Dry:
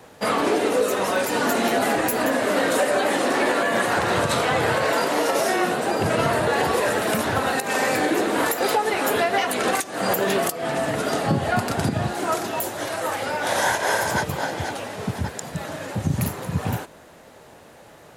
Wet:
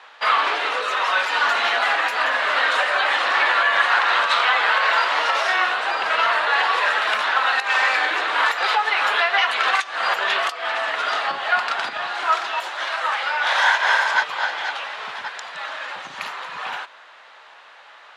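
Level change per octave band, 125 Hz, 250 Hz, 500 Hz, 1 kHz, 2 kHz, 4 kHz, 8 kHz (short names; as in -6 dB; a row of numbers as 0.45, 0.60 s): under -30 dB, -21.0 dB, -8.0 dB, +4.0 dB, +7.5 dB, +6.5 dB, -10.0 dB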